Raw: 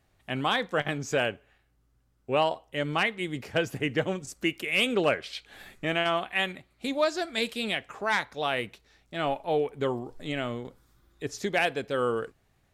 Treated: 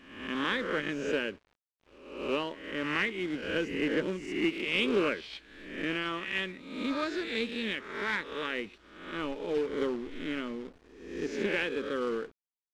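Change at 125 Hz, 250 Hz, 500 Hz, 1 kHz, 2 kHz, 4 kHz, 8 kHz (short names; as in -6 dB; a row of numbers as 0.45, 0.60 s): -9.0, 0.0, -4.0, -8.5, -3.0, -4.5, -9.5 dB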